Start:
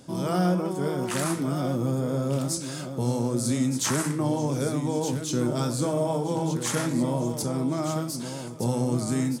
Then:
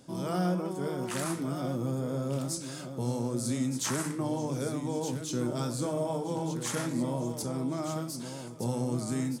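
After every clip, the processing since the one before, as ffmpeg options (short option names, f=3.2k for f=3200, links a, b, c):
-af "bandreject=f=50:t=h:w=6,bandreject=f=100:t=h:w=6,bandreject=f=150:t=h:w=6,volume=-5.5dB"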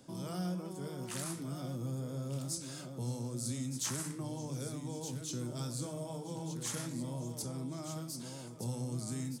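-filter_complex "[0:a]acrossover=split=170|3000[a][b][c];[b]acompressor=threshold=-46dB:ratio=2[d];[a][d][c]amix=inputs=3:normalize=0,volume=-3dB"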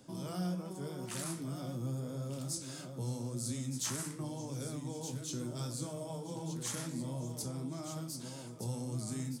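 -af "flanger=delay=9.1:depth=9.4:regen=-52:speed=0.89:shape=triangular,volume=4dB"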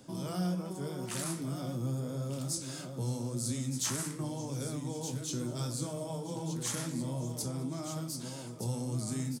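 -af "aecho=1:1:210:0.0708,volume=3.5dB"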